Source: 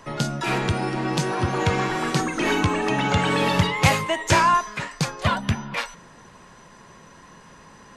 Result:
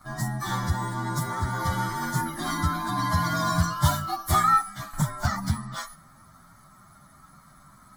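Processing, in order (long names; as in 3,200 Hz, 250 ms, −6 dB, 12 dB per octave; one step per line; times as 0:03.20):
partials spread apart or drawn together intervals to 116%
phaser with its sweep stopped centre 1,100 Hz, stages 4
0:04.93–0:05.58: multiband upward and downward compressor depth 100%
level +1 dB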